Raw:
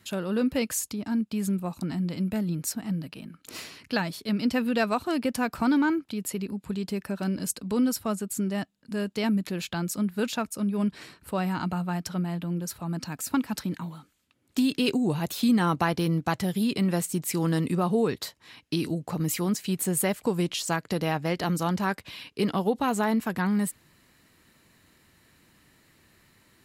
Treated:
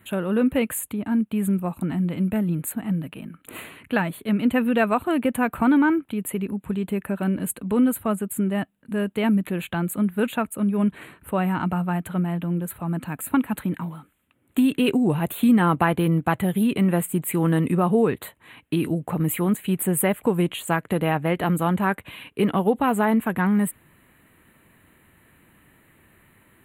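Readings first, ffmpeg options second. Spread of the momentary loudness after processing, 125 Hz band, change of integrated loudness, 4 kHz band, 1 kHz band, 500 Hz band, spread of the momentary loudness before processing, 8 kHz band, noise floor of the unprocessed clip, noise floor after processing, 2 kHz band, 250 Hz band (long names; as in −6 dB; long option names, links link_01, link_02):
8 LU, +5.0 dB, +4.5 dB, −2.5 dB, +5.0 dB, +5.0 dB, 8 LU, 0.0 dB, −66 dBFS, −62 dBFS, +4.5 dB, +5.0 dB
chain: -af "asuperstop=centerf=5300:order=4:qfactor=0.84,volume=5dB"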